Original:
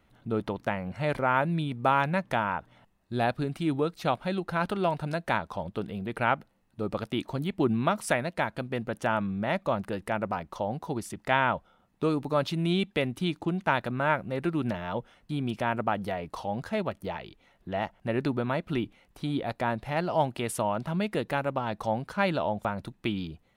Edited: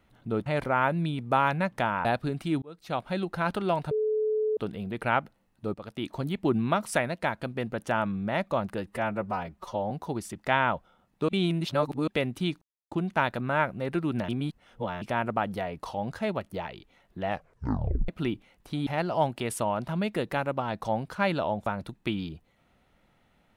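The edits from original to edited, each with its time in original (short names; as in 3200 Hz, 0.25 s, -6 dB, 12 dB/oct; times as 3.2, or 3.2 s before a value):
0.46–0.99 cut
2.58–3.2 cut
3.77–4.28 fade in linear
5.06–5.72 bleep 431 Hz -23.5 dBFS
6.89–7.34 fade in, from -15 dB
10.02–10.71 stretch 1.5×
12.09–12.88 reverse
13.42 insert silence 0.30 s
14.79–15.52 reverse
17.78 tape stop 0.81 s
19.37–19.85 cut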